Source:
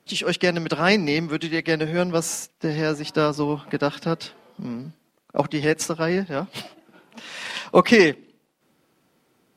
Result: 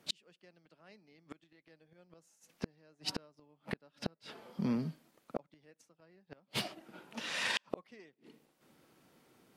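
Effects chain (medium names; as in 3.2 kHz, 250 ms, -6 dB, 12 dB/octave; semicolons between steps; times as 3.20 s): dynamic bell 600 Hz, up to +5 dB, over -40 dBFS, Q 6.3; inverted gate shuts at -19 dBFS, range -40 dB; trim -1.5 dB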